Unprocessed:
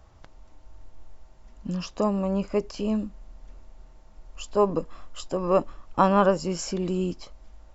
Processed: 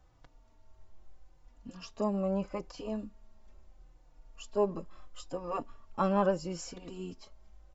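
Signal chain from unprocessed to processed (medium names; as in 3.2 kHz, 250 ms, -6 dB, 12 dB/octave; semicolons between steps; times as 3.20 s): 2.12–3.02 s: dynamic bell 810 Hz, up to +6 dB, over -40 dBFS, Q 0.85; endless flanger 3.5 ms -0.77 Hz; trim -6.5 dB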